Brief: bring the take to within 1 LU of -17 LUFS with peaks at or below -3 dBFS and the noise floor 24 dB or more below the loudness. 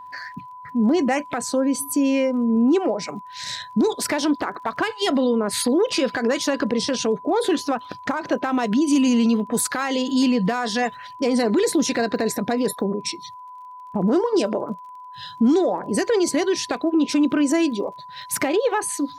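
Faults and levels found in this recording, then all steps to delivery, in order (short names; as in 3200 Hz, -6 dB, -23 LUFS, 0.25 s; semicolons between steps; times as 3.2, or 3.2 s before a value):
ticks 27/s; steady tone 1000 Hz; tone level -37 dBFS; loudness -21.5 LUFS; peak -10.5 dBFS; loudness target -17.0 LUFS
-> de-click; notch 1000 Hz, Q 30; gain +4.5 dB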